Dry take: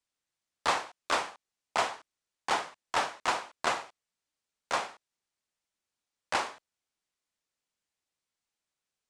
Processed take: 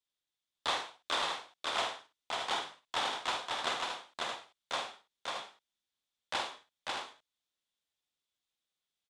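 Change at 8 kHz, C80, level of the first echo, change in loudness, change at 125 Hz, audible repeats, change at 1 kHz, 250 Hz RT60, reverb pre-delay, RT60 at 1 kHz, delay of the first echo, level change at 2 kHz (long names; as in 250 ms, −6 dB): −4.0 dB, no reverb audible, −6.5 dB, −4.0 dB, −5.0 dB, 4, −4.5 dB, no reverb audible, no reverb audible, no reverb audible, 49 ms, −3.5 dB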